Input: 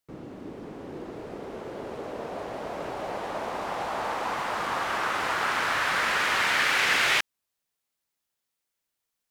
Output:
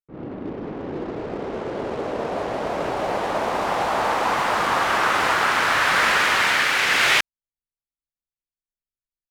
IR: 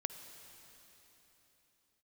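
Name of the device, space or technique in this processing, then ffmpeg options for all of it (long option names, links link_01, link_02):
voice memo with heavy noise removal: -af "anlmdn=0.0158,dynaudnorm=framelen=110:gausssize=3:maxgain=14dB,volume=-5dB"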